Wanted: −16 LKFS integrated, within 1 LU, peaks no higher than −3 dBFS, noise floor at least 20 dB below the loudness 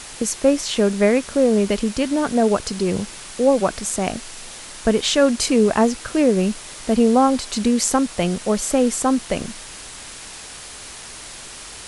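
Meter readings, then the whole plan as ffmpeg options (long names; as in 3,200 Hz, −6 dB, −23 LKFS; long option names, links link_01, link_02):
background noise floor −37 dBFS; target noise floor −40 dBFS; integrated loudness −19.5 LKFS; sample peak −3.0 dBFS; target loudness −16.0 LKFS
→ -af "afftdn=noise_reduction=6:noise_floor=-37"
-af "volume=3.5dB,alimiter=limit=-3dB:level=0:latency=1"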